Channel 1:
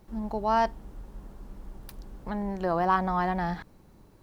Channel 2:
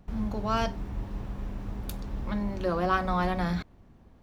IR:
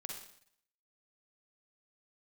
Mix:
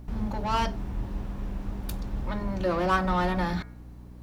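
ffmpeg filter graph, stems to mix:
-filter_complex "[0:a]asoftclip=type=tanh:threshold=-29dB,volume=0dB[link_01];[1:a]bandreject=frequency=110.3:width_type=h:width=4,bandreject=frequency=220.6:width_type=h:width=4,bandreject=frequency=330.9:width_type=h:width=4,bandreject=frequency=441.2:width_type=h:width=4,bandreject=frequency=551.5:width_type=h:width=4,bandreject=frequency=661.8:width_type=h:width=4,bandreject=frequency=772.1:width_type=h:width=4,bandreject=frequency=882.4:width_type=h:width=4,bandreject=frequency=992.7:width_type=h:width=4,bandreject=frequency=1103:width_type=h:width=4,bandreject=frequency=1213.3:width_type=h:width=4,bandreject=frequency=1323.6:width_type=h:width=4,bandreject=frequency=1433.9:width_type=h:width=4,bandreject=frequency=1544.2:width_type=h:width=4,bandreject=frequency=1654.5:width_type=h:width=4,bandreject=frequency=1764.8:width_type=h:width=4,bandreject=frequency=1875.1:width_type=h:width=4,bandreject=frequency=1985.4:width_type=h:width=4,bandreject=frequency=2095.7:width_type=h:width=4,bandreject=frequency=2206:width_type=h:width=4,bandreject=frequency=2316.3:width_type=h:width=4,aeval=exprs='val(0)+0.00631*(sin(2*PI*60*n/s)+sin(2*PI*2*60*n/s)/2+sin(2*PI*3*60*n/s)/3+sin(2*PI*4*60*n/s)/4+sin(2*PI*5*60*n/s)/5)':channel_layout=same,volume=1dB[link_02];[link_01][link_02]amix=inputs=2:normalize=0"

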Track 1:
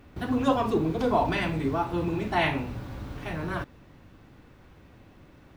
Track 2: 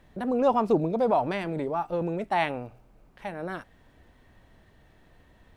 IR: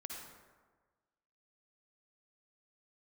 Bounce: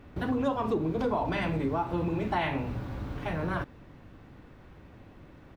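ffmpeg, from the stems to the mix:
-filter_complex "[0:a]volume=1.5dB[link_01];[1:a]volume=-1,adelay=7.1,volume=-6.5dB[link_02];[link_01][link_02]amix=inputs=2:normalize=0,highshelf=frequency=3600:gain=-8,acompressor=threshold=-26dB:ratio=4"

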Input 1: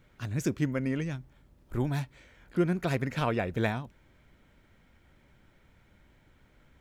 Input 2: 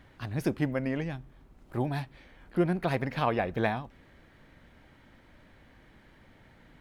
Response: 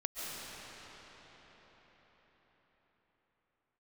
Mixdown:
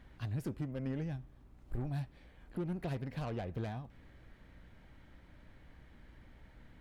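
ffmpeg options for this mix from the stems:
-filter_complex "[0:a]aemphasis=mode=reproduction:type=bsi,aeval=exprs='val(0)+0.00282*(sin(2*PI*60*n/s)+sin(2*PI*2*60*n/s)/2+sin(2*PI*3*60*n/s)/3+sin(2*PI*4*60*n/s)/4+sin(2*PI*5*60*n/s)/5)':channel_layout=same,volume=-10.5dB[link_01];[1:a]asoftclip=type=tanh:threshold=-25dB,volume=-1,volume=-5.5dB[link_02];[link_01][link_02]amix=inputs=2:normalize=0,alimiter=level_in=4dB:limit=-24dB:level=0:latency=1:release=312,volume=-4dB"

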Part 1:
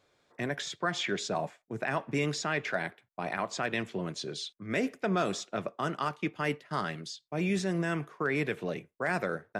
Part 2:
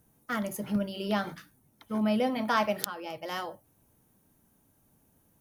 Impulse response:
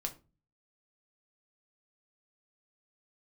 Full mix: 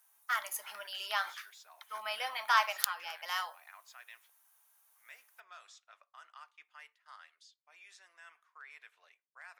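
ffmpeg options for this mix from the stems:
-filter_complex "[0:a]adelay=350,volume=-19.5dB,asplit=3[link_01][link_02][link_03];[link_01]atrim=end=4.3,asetpts=PTS-STARTPTS,afade=type=out:start_time=4.296:duration=0.004:curve=hsin[link_04];[link_02]atrim=start=4.3:end=4.93,asetpts=PTS-STARTPTS,volume=0[link_05];[link_03]atrim=start=4.93,asetpts=PTS-STARTPTS,afade=type=in:duration=0.004:curve=hsin[link_06];[link_04][link_05][link_06]concat=n=3:v=0:a=1,asplit=2[link_07][link_08];[link_08]volume=-16.5dB[link_09];[1:a]volume=1.5dB,asplit=2[link_10][link_11];[link_11]volume=-18.5dB[link_12];[2:a]atrim=start_sample=2205[link_13];[link_09][link_12]amix=inputs=2:normalize=0[link_14];[link_14][link_13]afir=irnorm=-1:irlink=0[link_15];[link_07][link_10][link_15]amix=inputs=3:normalize=0,highpass=frequency=980:width=0.5412,highpass=frequency=980:width=1.3066"

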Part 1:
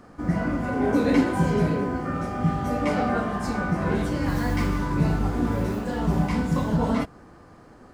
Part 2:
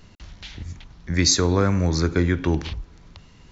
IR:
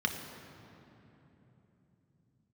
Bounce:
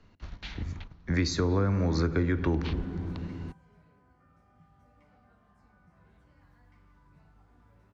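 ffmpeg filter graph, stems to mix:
-filter_complex "[0:a]acrossover=split=140|680|3200[link_01][link_02][link_03][link_04];[link_01]acompressor=threshold=-29dB:ratio=4[link_05];[link_02]acompressor=threshold=-43dB:ratio=4[link_06];[link_03]acompressor=threshold=-36dB:ratio=4[link_07];[link_04]acompressor=threshold=-51dB:ratio=4[link_08];[link_05][link_06][link_07][link_08]amix=inputs=4:normalize=0,adelay=2150,volume=-18.5dB[link_09];[1:a]lowpass=5700,volume=2dB,asplit=2[link_10][link_11];[link_11]volume=-19dB[link_12];[2:a]atrim=start_sample=2205[link_13];[link_12][link_13]afir=irnorm=-1:irlink=0[link_14];[link_09][link_10][link_14]amix=inputs=3:normalize=0,agate=range=-11dB:threshold=-39dB:ratio=16:detection=peak,highshelf=frequency=4200:gain=-8,acrossover=split=120|330[link_15][link_16][link_17];[link_15]acompressor=threshold=-30dB:ratio=4[link_18];[link_16]acompressor=threshold=-30dB:ratio=4[link_19];[link_17]acompressor=threshold=-32dB:ratio=4[link_20];[link_18][link_19][link_20]amix=inputs=3:normalize=0"

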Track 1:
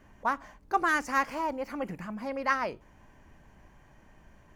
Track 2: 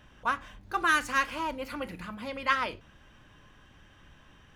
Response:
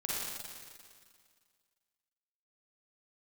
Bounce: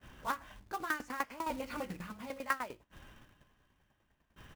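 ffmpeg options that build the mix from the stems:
-filter_complex "[0:a]highpass=43,aeval=exprs='val(0)*pow(10,-21*if(lt(mod(10*n/s,1),2*abs(10)/1000),1-mod(10*n/s,1)/(2*abs(10)/1000),(mod(10*n/s,1)-2*abs(10)/1000)/(1-2*abs(10)/1000))/20)':channel_layout=same,volume=-2.5dB,asplit=2[link_01][link_02];[1:a]asoftclip=type=tanh:threshold=-25dB,aeval=exprs='val(0)*pow(10,-20*if(lt(mod(0.69*n/s,1),2*abs(0.69)/1000),1-mod(0.69*n/s,1)/(2*abs(0.69)/1000),(mod(0.69*n/s,1)-2*abs(0.69)/1000)/(1-2*abs(0.69)/1000))/20)':channel_layout=same,volume=-1,adelay=13,volume=3dB[link_03];[link_02]apad=whole_len=201400[link_04];[link_03][link_04]sidechaincompress=threshold=-43dB:ratio=5:attack=16:release=233[link_05];[link_01][link_05]amix=inputs=2:normalize=0,agate=range=-9dB:threshold=-56dB:ratio=16:detection=peak,highshelf=frequency=7600:gain=-9,acrusher=bits=3:mode=log:mix=0:aa=0.000001"

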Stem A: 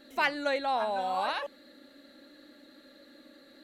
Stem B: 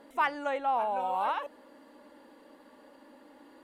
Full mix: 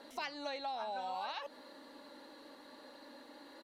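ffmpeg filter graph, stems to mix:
ffmpeg -i stem1.wav -i stem2.wav -filter_complex "[0:a]lowpass=frequency=5600:width_type=q:width=3.3,volume=-7dB[link_01];[1:a]acompressor=threshold=-35dB:ratio=6,lowshelf=frequency=300:gain=-9.5,volume=-1,adelay=0.4,volume=1.5dB[link_02];[link_01][link_02]amix=inputs=2:normalize=0,acompressor=threshold=-37dB:ratio=6" out.wav

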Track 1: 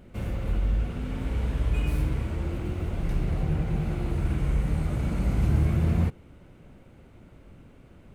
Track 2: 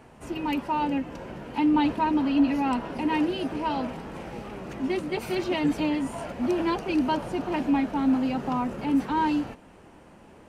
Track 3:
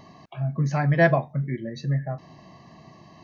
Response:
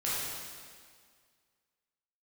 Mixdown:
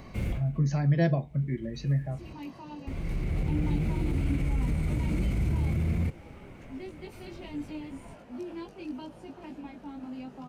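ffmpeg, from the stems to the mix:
-filter_complex "[0:a]equalizer=frequency=2200:width_type=o:width=0.32:gain=10,alimiter=limit=-22.5dB:level=0:latency=1:release=36,volume=2dB,asplit=3[link_01][link_02][link_03];[link_01]atrim=end=2.33,asetpts=PTS-STARTPTS,afade=type=out:start_time=2.326:duration=0.004:curve=hsin[link_04];[link_02]atrim=start=2.33:end=2.87,asetpts=PTS-STARTPTS,volume=0[link_05];[link_03]atrim=start=2.87,asetpts=PTS-STARTPTS,afade=type=in:duration=0.004:curve=hsin[link_06];[link_04][link_05][link_06]concat=n=3:v=0:a=1[link_07];[1:a]flanger=delay=18.5:depth=2.3:speed=0.81,adelay=1900,volume=-11dB[link_08];[2:a]volume=-2dB,asplit=2[link_09][link_10];[link_10]apad=whole_len=359242[link_11];[link_07][link_11]sidechaincompress=threshold=-43dB:ratio=12:attack=7.8:release=952[link_12];[link_12][link_08][link_09]amix=inputs=3:normalize=0,acrossover=split=480|3000[link_13][link_14][link_15];[link_14]acompressor=threshold=-52dB:ratio=2[link_16];[link_13][link_16][link_15]amix=inputs=3:normalize=0"

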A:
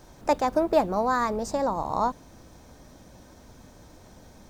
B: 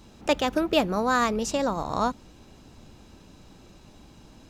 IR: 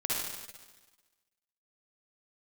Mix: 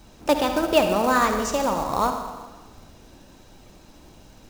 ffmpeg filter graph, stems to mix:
-filter_complex "[0:a]lowshelf=frequency=230:gain=-10,volume=-7.5dB,asplit=2[link_01][link_02];[link_02]volume=-7dB[link_03];[1:a]flanger=delay=1.3:depth=2.3:regen=51:speed=1.4:shape=sinusoidal,volume=1.5dB,asplit=2[link_04][link_05];[link_05]volume=-9dB[link_06];[2:a]atrim=start_sample=2205[link_07];[link_03][link_06]amix=inputs=2:normalize=0[link_08];[link_08][link_07]afir=irnorm=-1:irlink=0[link_09];[link_01][link_04][link_09]amix=inputs=3:normalize=0,acrusher=bits=4:mode=log:mix=0:aa=0.000001"

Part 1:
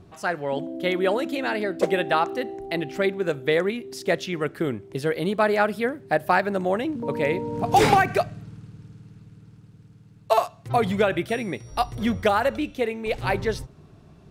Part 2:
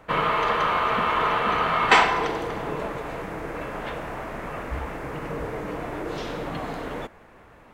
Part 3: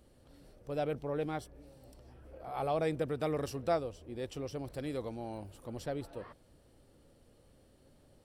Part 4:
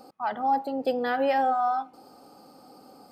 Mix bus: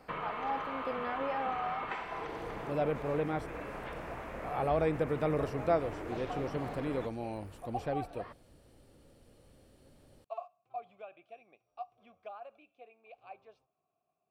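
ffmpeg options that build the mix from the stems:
ffmpeg -i stem1.wav -i stem2.wav -i stem3.wav -i stem4.wav -filter_complex "[0:a]asplit=3[link_01][link_02][link_03];[link_01]bandpass=frequency=730:width_type=q:width=8,volume=0dB[link_04];[link_02]bandpass=frequency=1090:width_type=q:width=8,volume=-6dB[link_05];[link_03]bandpass=frequency=2440:width_type=q:width=8,volume=-9dB[link_06];[link_04][link_05][link_06]amix=inputs=3:normalize=0,volume=-17dB[link_07];[1:a]acompressor=threshold=-26dB:ratio=10,volume=-9.5dB[link_08];[2:a]adelay=2000,volume=2.5dB[link_09];[3:a]volume=-12dB[link_10];[link_07][link_08][link_09][link_10]amix=inputs=4:normalize=0,acrossover=split=2600[link_11][link_12];[link_12]acompressor=threshold=-57dB:ratio=4:attack=1:release=60[link_13];[link_11][link_13]amix=inputs=2:normalize=0,equalizer=frequency=2400:width=4.5:gain=2.5" out.wav

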